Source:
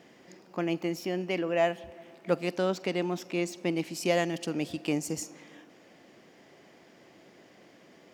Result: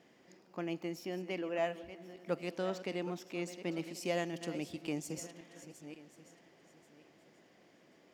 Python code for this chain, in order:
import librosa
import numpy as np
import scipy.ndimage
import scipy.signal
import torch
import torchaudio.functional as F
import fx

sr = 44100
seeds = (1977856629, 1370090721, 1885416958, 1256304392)

y = fx.reverse_delay_fb(x, sr, ms=541, feedback_pct=43, wet_db=-12)
y = y * librosa.db_to_amplitude(-8.5)